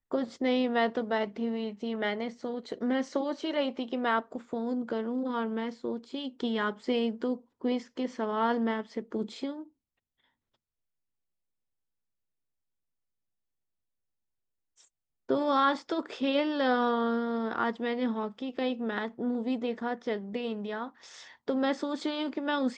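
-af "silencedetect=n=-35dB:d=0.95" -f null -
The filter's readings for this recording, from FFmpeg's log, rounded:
silence_start: 9.60
silence_end: 15.29 | silence_duration: 5.69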